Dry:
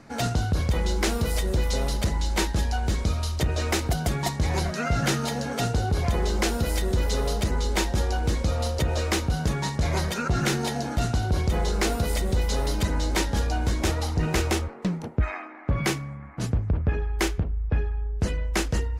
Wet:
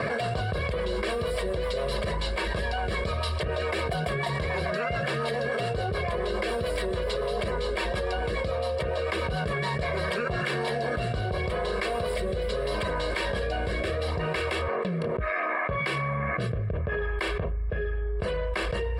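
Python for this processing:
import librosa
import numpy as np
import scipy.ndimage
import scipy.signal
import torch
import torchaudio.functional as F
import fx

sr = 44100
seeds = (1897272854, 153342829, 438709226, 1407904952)

y = fx.highpass(x, sr, hz=500.0, slope=6)
y = y + 0.82 * np.pad(y, (int(1.8 * sr / 1000.0), 0))[:len(y)]
y = fx.rotary_switch(y, sr, hz=7.0, then_hz=0.75, switch_at_s=9.57)
y = np.convolve(y, np.full(7, 1.0 / 7))[:len(y)]
y = fx.env_flatten(y, sr, amount_pct=100)
y = y * librosa.db_to_amplitude(-3.5)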